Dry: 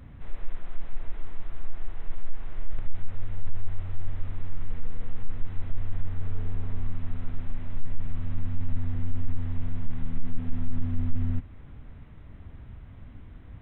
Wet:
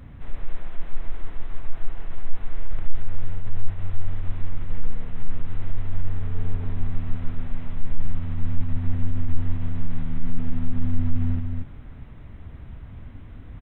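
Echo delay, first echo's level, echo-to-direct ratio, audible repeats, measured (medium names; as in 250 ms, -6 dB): 231 ms, -5.5 dB, -5.5 dB, 1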